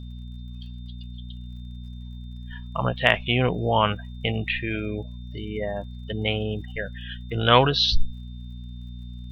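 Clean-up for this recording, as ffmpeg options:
-af "adeclick=t=4,bandreject=f=60.5:t=h:w=4,bandreject=f=121:t=h:w=4,bandreject=f=181.5:t=h:w=4,bandreject=f=242:t=h:w=4,bandreject=f=3.6k:w=30"

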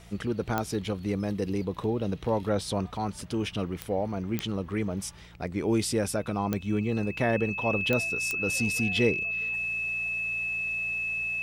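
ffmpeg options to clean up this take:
-af "adeclick=t=4,bandreject=f=57.7:t=h:w=4,bandreject=f=115.4:t=h:w=4,bandreject=f=173.1:t=h:w=4,bandreject=f=2.6k:w=30"

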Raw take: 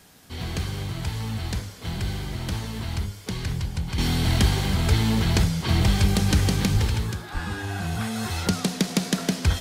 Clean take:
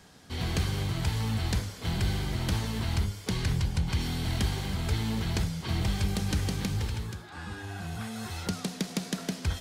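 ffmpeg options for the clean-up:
-filter_complex "[0:a]asplit=3[a][b][c];[a]afade=t=out:st=6.73:d=0.02[d];[b]highpass=f=140:w=0.5412,highpass=f=140:w=1.3066,afade=t=in:st=6.73:d=0.02,afade=t=out:st=6.85:d=0.02[e];[c]afade=t=in:st=6.85:d=0.02[f];[d][e][f]amix=inputs=3:normalize=0,asplit=3[g][h][i];[g]afade=t=out:st=7.33:d=0.02[j];[h]highpass=f=140:w=0.5412,highpass=f=140:w=1.3066,afade=t=in:st=7.33:d=0.02,afade=t=out:st=7.45:d=0.02[k];[i]afade=t=in:st=7.45:d=0.02[l];[j][k][l]amix=inputs=3:normalize=0,agate=range=-21dB:threshold=-26dB,asetnsamples=n=441:p=0,asendcmd='3.98 volume volume -8.5dB',volume=0dB"

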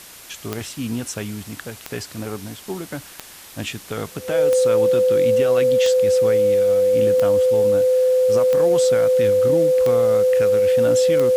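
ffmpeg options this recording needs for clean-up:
-af "adeclick=t=4,bandreject=f=510:w=30,afwtdn=0.01"

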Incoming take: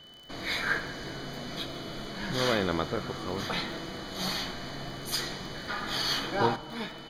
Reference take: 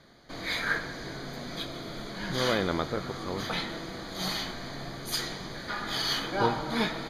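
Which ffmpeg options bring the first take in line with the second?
-af "adeclick=t=4,bandreject=f=3k:w=30,asetnsamples=n=441:p=0,asendcmd='6.56 volume volume 8.5dB',volume=0dB"

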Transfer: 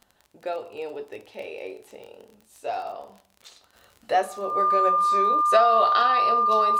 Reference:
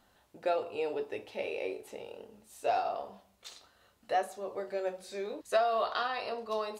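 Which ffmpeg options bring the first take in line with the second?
-af "adeclick=t=4,bandreject=f=1.2k:w=30,asetnsamples=n=441:p=0,asendcmd='3.73 volume volume -8dB',volume=0dB"

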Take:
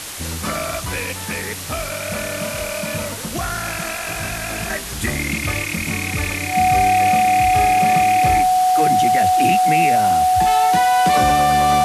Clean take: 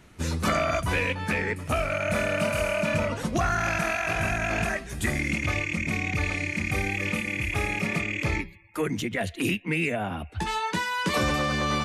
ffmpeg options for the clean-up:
-af "adeclick=t=4,bandreject=f=740:w=30,afwtdn=0.035,asetnsamples=n=441:p=0,asendcmd='4.7 volume volume -4.5dB',volume=0dB"

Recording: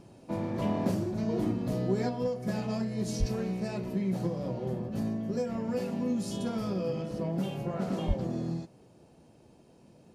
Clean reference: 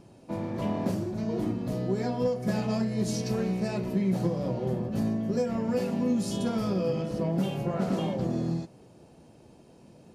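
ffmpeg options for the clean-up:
-filter_complex "[0:a]asplit=3[a][b][c];[a]afade=t=out:st=3.19:d=0.02[d];[b]highpass=f=140:w=0.5412,highpass=f=140:w=1.3066,afade=t=in:st=3.19:d=0.02,afade=t=out:st=3.31:d=0.02[e];[c]afade=t=in:st=3.31:d=0.02[f];[d][e][f]amix=inputs=3:normalize=0,asplit=3[g][h][i];[g]afade=t=out:st=8.07:d=0.02[j];[h]highpass=f=140:w=0.5412,highpass=f=140:w=1.3066,afade=t=in:st=8.07:d=0.02,afade=t=out:st=8.19:d=0.02[k];[i]afade=t=in:st=8.19:d=0.02[l];[j][k][l]amix=inputs=3:normalize=0,asetnsamples=n=441:p=0,asendcmd='2.09 volume volume 4dB',volume=0dB"

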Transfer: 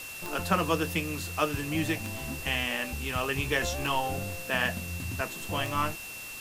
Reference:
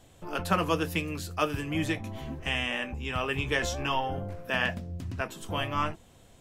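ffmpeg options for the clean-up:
-af "adeclick=t=4,bandreject=f=2.7k:w=30,afwtdn=0.0071"

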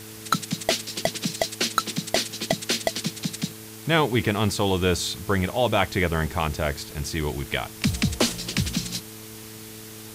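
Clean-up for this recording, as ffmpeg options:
-af "bandreject=f=109.1:t=h:w=4,bandreject=f=218.2:t=h:w=4,bandreject=f=327.3:t=h:w=4,bandreject=f=436.4:t=h:w=4,afwtdn=0.0079"

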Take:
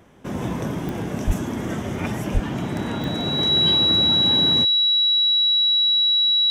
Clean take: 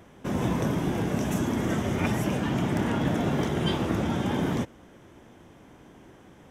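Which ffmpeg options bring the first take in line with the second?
-filter_complex "[0:a]adeclick=t=4,bandreject=f=3.9k:w=30,asplit=3[a][b][c];[a]afade=t=out:st=1.26:d=0.02[d];[b]highpass=f=140:w=0.5412,highpass=f=140:w=1.3066,afade=t=in:st=1.26:d=0.02,afade=t=out:st=1.38:d=0.02[e];[c]afade=t=in:st=1.38:d=0.02[f];[d][e][f]amix=inputs=3:normalize=0,asplit=3[g][h][i];[g]afade=t=out:st=2.33:d=0.02[j];[h]highpass=f=140:w=0.5412,highpass=f=140:w=1.3066,afade=t=in:st=2.33:d=0.02,afade=t=out:st=2.45:d=0.02[k];[i]afade=t=in:st=2.45:d=0.02[l];[j][k][l]amix=inputs=3:normalize=0"

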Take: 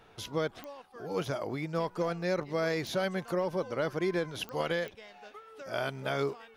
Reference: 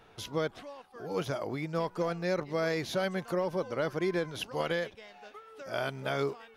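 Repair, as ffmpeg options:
-af "adeclick=t=4"

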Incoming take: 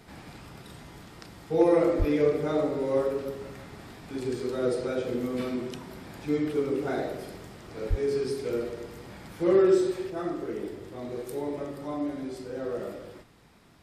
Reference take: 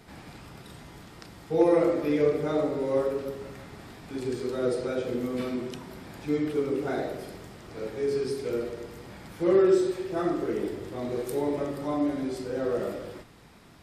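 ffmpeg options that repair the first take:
-filter_complex "[0:a]asplit=3[a][b][c];[a]afade=t=out:st=1.98:d=0.02[d];[b]highpass=f=140:w=0.5412,highpass=f=140:w=1.3066,afade=t=in:st=1.98:d=0.02,afade=t=out:st=2.1:d=0.02[e];[c]afade=t=in:st=2.1:d=0.02[f];[d][e][f]amix=inputs=3:normalize=0,asplit=3[g][h][i];[g]afade=t=out:st=7.89:d=0.02[j];[h]highpass=f=140:w=0.5412,highpass=f=140:w=1.3066,afade=t=in:st=7.89:d=0.02,afade=t=out:st=8.01:d=0.02[k];[i]afade=t=in:st=8.01:d=0.02[l];[j][k][l]amix=inputs=3:normalize=0,asetnsamples=n=441:p=0,asendcmd='10.1 volume volume 4.5dB',volume=0dB"

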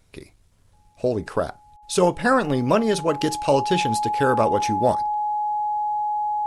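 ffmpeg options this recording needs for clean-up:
-af "bandreject=f=840:w=30"

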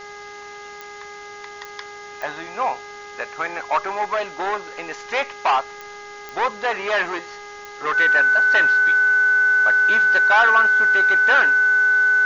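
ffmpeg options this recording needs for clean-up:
-af "adeclick=t=4,bandreject=f=410.7:t=h:w=4,bandreject=f=821.4:t=h:w=4,bandreject=f=1.2321k:t=h:w=4,bandreject=f=1.6428k:t=h:w=4,bandreject=f=2.0535k:t=h:w=4,bandreject=f=1.5k:w=30,afwtdn=0.0079"

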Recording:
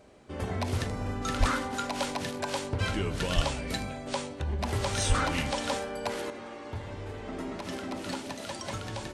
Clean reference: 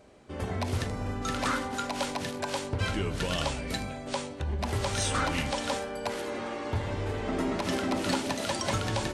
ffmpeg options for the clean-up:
-filter_complex "[0:a]asplit=3[a][b][c];[a]afade=t=out:st=1.39:d=0.02[d];[b]highpass=f=140:w=0.5412,highpass=f=140:w=1.3066,afade=t=in:st=1.39:d=0.02,afade=t=out:st=1.51:d=0.02[e];[c]afade=t=in:st=1.51:d=0.02[f];[d][e][f]amix=inputs=3:normalize=0,asplit=3[g][h][i];[g]afade=t=out:st=3.35:d=0.02[j];[h]highpass=f=140:w=0.5412,highpass=f=140:w=1.3066,afade=t=in:st=3.35:d=0.02,afade=t=out:st=3.47:d=0.02[k];[i]afade=t=in:st=3.47:d=0.02[l];[j][k][l]amix=inputs=3:normalize=0,asplit=3[m][n][o];[m]afade=t=out:st=5.08:d=0.02[p];[n]highpass=f=140:w=0.5412,highpass=f=140:w=1.3066,afade=t=in:st=5.08:d=0.02,afade=t=out:st=5.2:d=0.02[q];[o]afade=t=in:st=5.2:d=0.02[r];[p][q][r]amix=inputs=3:normalize=0,asetnsamples=n=441:p=0,asendcmd='6.3 volume volume 7dB',volume=0dB"

